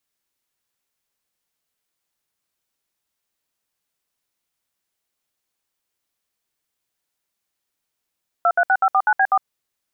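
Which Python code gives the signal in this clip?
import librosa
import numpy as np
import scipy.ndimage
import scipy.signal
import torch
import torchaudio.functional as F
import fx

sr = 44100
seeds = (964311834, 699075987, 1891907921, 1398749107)

y = fx.dtmf(sr, digits='236549B4', tone_ms=59, gap_ms=65, level_db=-15.5)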